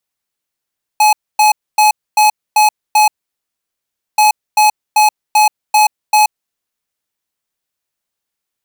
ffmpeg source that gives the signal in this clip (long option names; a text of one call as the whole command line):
ffmpeg -f lavfi -i "aevalsrc='0.376*(2*lt(mod(849*t,1),0.5)-1)*clip(min(mod(mod(t,3.18),0.39),0.13-mod(mod(t,3.18),0.39))/0.005,0,1)*lt(mod(t,3.18),2.34)':duration=6.36:sample_rate=44100" out.wav